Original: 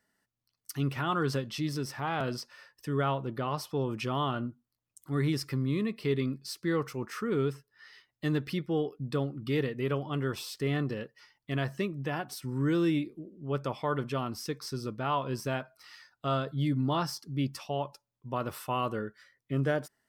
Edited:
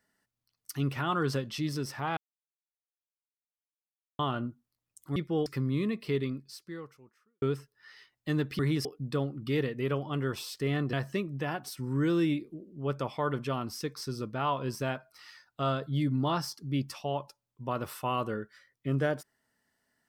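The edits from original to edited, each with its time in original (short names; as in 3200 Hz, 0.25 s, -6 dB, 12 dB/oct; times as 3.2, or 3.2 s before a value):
2.17–4.19 mute
5.16–5.42 swap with 8.55–8.85
6.04–7.38 fade out quadratic
10.93–11.58 cut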